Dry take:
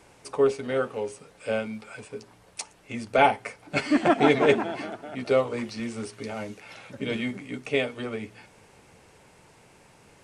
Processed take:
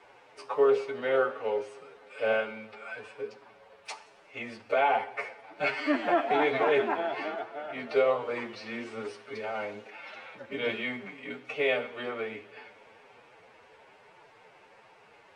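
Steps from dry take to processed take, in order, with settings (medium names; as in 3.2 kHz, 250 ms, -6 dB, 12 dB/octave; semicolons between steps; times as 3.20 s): block-companded coder 7-bit; three-band isolator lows -17 dB, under 400 Hz, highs -16 dB, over 4.4 kHz; peak limiter -18.5 dBFS, peak gain reduction 10 dB; treble shelf 4.3 kHz -6 dB; two-slope reverb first 0.6 s, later 4.2 s, from -17 dB, DRR 12.5 dB; time stretch by phase-locked vocoder 1.5×; flange 1.2 Hz, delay 5.1 ms, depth 8.5 ms, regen +78%; trim +7 dB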